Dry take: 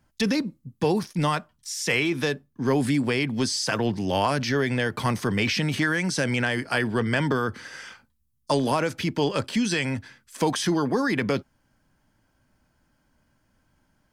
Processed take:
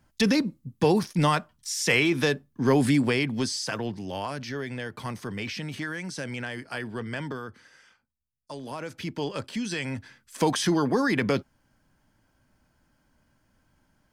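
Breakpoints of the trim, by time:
2.97 s +1.5 dB
4.16 s -9.5 dB
7.23 s -9.5 dB
7.82 s -16.5 dB
8.55 s -16.5 dB
9.04 s -7 dB
9.64 s -7 dB
10.44 s 0 dB

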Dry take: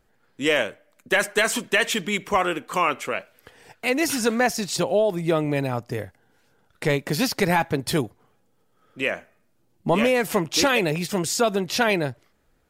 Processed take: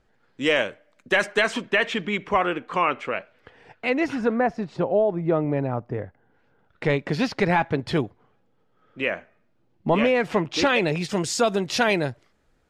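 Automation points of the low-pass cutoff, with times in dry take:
1.16 s 5.6 kHz
1.74 s 2.9 kHz
3.91 s 2.9 kHz
4.34 s 1.3 kHz
5.90 s 1.3 kHz
6.92 s 3.3 kHz
10.45 s 3.3 kHz
11.38 s 8.1 kHz

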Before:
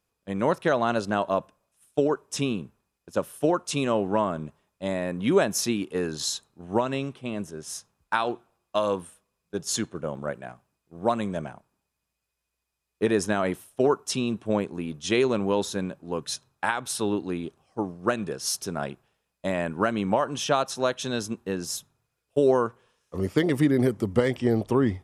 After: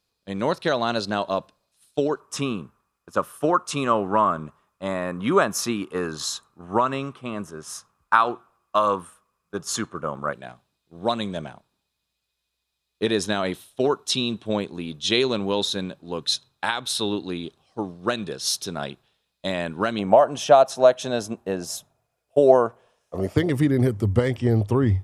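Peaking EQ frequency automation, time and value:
peaking EQ +14 dB 0.6 oct
4.2 kHz
from 2.20 s 1.2 kHz
from 10.33 s 3.8 kHz
from 19.99 s 660 Hz
from 23.37 s 99 Hz

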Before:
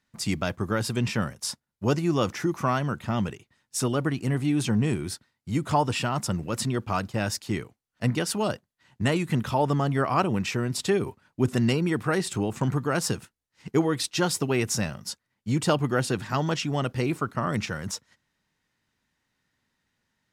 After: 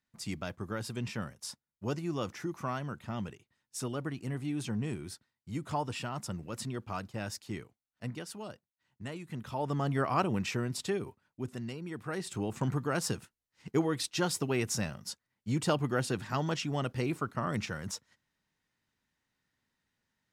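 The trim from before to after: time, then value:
7.62 s -10.5 dB
8.49 s -17 dB
9.25 s -17 dB
9.89 s -5.5 dB
10.58 s -5.5 dB
11.74 s -17.5 dB
12.52 s -6 dB

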